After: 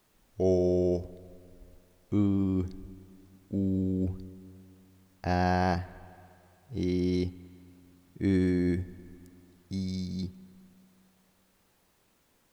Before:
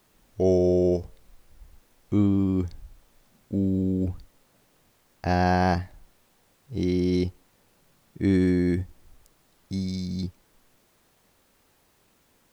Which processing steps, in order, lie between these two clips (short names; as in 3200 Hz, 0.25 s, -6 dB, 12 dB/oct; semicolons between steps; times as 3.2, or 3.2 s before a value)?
spring tank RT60 2.7 s, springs 32/52/56 ms, chirp 45 ms, DRR 17 dB; gain -4.5 dB